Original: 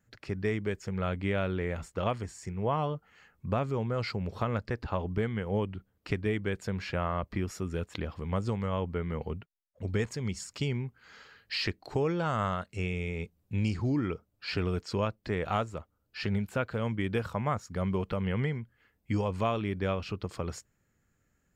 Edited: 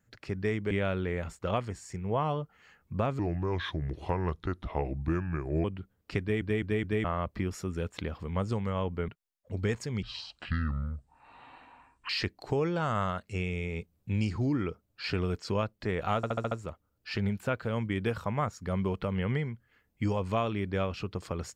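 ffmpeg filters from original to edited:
-filter_complex "[0:a]asplit=16[s0][s1][s2][s3][s4][s5][s6][s7][s8][s9][s10][s11][s12][s13][s14][s15];[s0]atrim=end=0.712[s16];[s1]atrim=start=1.238:end=3.724[s17];[s2]atrim=start=3.72:end=5.61,asetpts=PTS-STARTPTS,asetrate=33957,aresample=44100,atrim=end_sample=108245,asetpts=PTS-STARTPTS[s18];[s3]atrim=start=5.606:end=6.382[s19];[s4]atrim=start=6.168:end=6.382[s20];[s5]atrim=start=6.168:end=6.382[s21];[s6]atrim=start=6.168:end=6.382[s22];[s7]atrim=start=7.008:end=9.052[s23];[s8]atrim=start=9.388:end=10.334[s24];[s9]atrim=start=10.33:end=11.53,asetpts=PTS-STARTPTS,asetrate=25578,aresample=44100,atrim=end_sample=91241,asetpts=PTS-STARTPTS[s25];[s10]atrim=start=11.526:end=15.672[s26];[s11]atrim=start=15.598:end=15.672[s27];[s12]atrim=start=15.598:end=15.672[s28];[s13]atrim=start=15.598:end=15.672[s29];[s14]atrim=start=15.598:end=15.672[s30];[s15]atrim=start=15.598[s31];[s16][s17]acrossfade=d=0.004:c1=hsin:c2=hsin[s32];[s32][s18]acrossfade=d=0.004:c1=hsin:c2=hsin[s33];[s33][s19]acrossfade=d=0.004:c1=hsin:c2=hsin[s34];[s34][s20]acrossfade=d=0.004:c1=hsin:c2=hsin[s35];[s35][s21]acrossfade=d=0.004:c1=hsin:c2=hsin[s36];[s36][s22]acrossfade=d=0.004:c1=hsin:c2=hsin[s37];[s37][s23]acrossfade=d=0.004:c1=hsin:c2=hsin[s38];[s38][s24]acrossfade=d=0.004:c1=hsin:c2=hsin[s39];[s39][s25]acrossfade=d=0.004:c1=hsin:c2=hsin[s40];[s40][s26]acrossfade=d=0.004:c1=hsin:c2=hsin[s41];[s41][s27]acrossfade=d=0.004:c1=hsin:c2=hsin[s42];[s42][s28]acrossfade=d=0.004:c1=hsin:c2=hsin[s43];[s43][s29]acrossfade=d=0.004:c1=hsin:c2=hsin[s44];[s44][s30]acrossfade=d=0.004:c1=hsin:c2=hsin[s45];[s45][s31]acrossfade=d=0.004:c1=hsin:c2=hsin"

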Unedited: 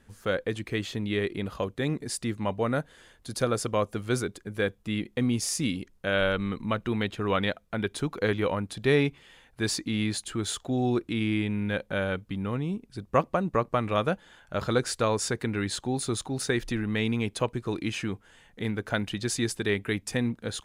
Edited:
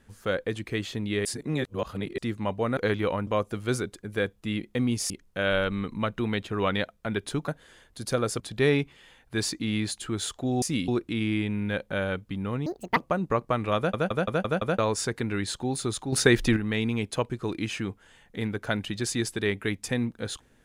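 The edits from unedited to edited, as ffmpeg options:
-filter_complex "[0:a]asplit=20[s0][s1][s2][s3][s4][s5][s6][s7][s8][s9][s10][s11][s12][s13][s14][s15][s16][s17][s18][s19];[s0]atrim=end=1.252[s20];[s1]atrim=start=1.248:end=2.182,asetpts=PTS-STARTPTS,areverse[s21];[s2]atrim=start=2.178:end=2.772[s22];[s3]atrim=start=8.158:end=8.662[s23];[s4]atrim=start=3.688:end=5.522[s24];[s5]atrim=start=5.778:end=8.162[s25];[s6]atrim=start=2.768:end=3.692[s26];[s7]atrim=start=8.658:end=10.882[s27];[s8]atrim=start=5.518:end=5.782[s28];[s9]atrim=start=10.878:end=12.664[s29];[s10]atrim=start=12.66:end=13.2,asetpts=PTS-STARTPTS,asetrate=78057,aresample=44100,atrim=end_sample=13454,asetpts=PTS-STARTPTS[s30];[s11]atrim=start=13.196:end=14.172[s31];[s12]atrim=start=13.998:end=14.172[s32];[s13]atrim=start=13.998:end=14.172[s33];[s14]atrim=start=13.998:end=14.172[s34];[s15]atrim=start=13.998:end=14.172[s35];[s16]atrim=start=13.998:end=14.172[s36];[s17]atrim=start=15.018:end=16.362[s37];[s18]atrim=start=16.358:end=16.802,asetpts=PTS-STARTPTS,volume=2.37[s38];[s19]atrim=start=16.798[s39];[s20][s21]acrossfade=d=0.004:c1=hsin:c2=hsin[s40];[s40][s22]acrossfade=d=0.004:c1=hsin:c2=hsin[s41];[s41][s23]acrossfade=d=0.004:c1=hsin:c2=hsin[s42];[s42][s24]acrossfade=d=0.004:c1=hsin:c2=hsin[s43];[s43][s25]acrossfade=d=0.004:c1=hsin:c2=hsin[s44];[s44][s26]acrossfade=d=0.004:c1=hsin:c2=hsin[s45];[s45][s27]acrossfade=d=0.004:c1=hsin:c2=hsin[s46];[s46][s28]acrossfade=d=0.004:c1=hsin:c2=hsin[s47];[s47][s29]acrossfade=d=0.004:c1=hsin:c2=hsin[s48];[s48][s30]acrossfade=d=0.004:c1=hsin:c2=hsin[s49];[s49][s31]acrossfade=d=0.004:c1=hsin:c2=hsin[s50];[s50][s32]acrossfade=d=0.004:c1=hsin:c2=hsin[s51];[s51][s33]acrossfade=d=0.004:c1=hsin:c2=hsin[s52];[s52][s34]acrossfade=d=0.004:c1=hsin:c2=hsin[s53];[s53][s35]acrossfade=d=0.004:c1=hsin:c2=hsin[s54];[s54][s36]acrossfade=d=0.004:c1=hsin:c2=hsin[s55];[s55][s37]acrossfade=d=0.004:c1=hsin:c2=hsin[s56];[s56][s38]acrossfade=d=0.004:c1=hsin:c2=hsin[s57];[s57][s39]acrossfade=d=0.004:c1=hsin:c2=hsin"

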